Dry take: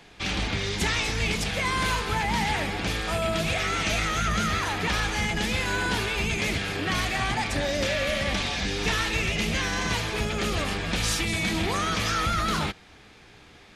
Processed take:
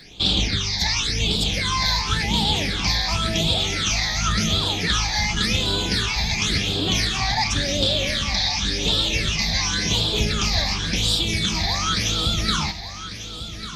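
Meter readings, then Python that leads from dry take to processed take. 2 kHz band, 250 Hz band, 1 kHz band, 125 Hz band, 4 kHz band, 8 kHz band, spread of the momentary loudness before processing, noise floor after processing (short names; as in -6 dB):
+0.5 dB, +3.0 dB, 0.0 dB, +5.0 dB, +10.0 dB, +7.0 dB, 3 LU, -34 dBFS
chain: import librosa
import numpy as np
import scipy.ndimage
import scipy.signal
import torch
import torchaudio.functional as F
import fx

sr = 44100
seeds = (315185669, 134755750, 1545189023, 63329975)

p1 = fx.band_shelf(x, sr, hz=4500.0, db=10.0, octaves=1.1)
p2 = fx.rider(p1, sr, range_db=10, speed_s=0.5)
p3 = fx.phaser_stages(p2, sr, stages=8, low_hz=380.0, high_hz=1900.0, hz=0.92, feedback_pct=35)
p4 = fx.dmg_crackle(p3, sr, seeds[0], per_s=11.0, level_db=-50.0)
p5 = p4 + fx.echo_feedback(p4, sr, ms=1146, feedback_pct=41, wet_db=-12, dry=0)
y = F.gain(torch.from_numpy(p5), 3.5).numpy()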